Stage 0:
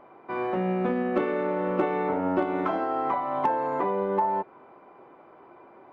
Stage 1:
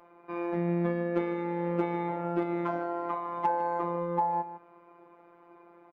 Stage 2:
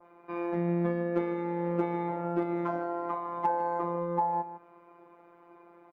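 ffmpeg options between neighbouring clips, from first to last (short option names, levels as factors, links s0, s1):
-filter_complex "[0:a]asplit=2[s0][s1];[s1]adelay=151.6,volume=0.251,highshelf=f=4000:g=-3.41[s2];[s0][s2]amix=inputs=2:normalize=0,afftfilt=real='hypot(re,im)*cos(PI*b)':imag='0':win_size=1024:overlap=0.75,volume=0.841"
-af "adynamicequalizer=threshold=0.00316:dfrequency=3000:dqfactor=0.99:tfrequency=3000:tqfactor=0.99:attack=5:release=100:ratio=0.375:range=2.5:mode=cutabove:tftype=bell"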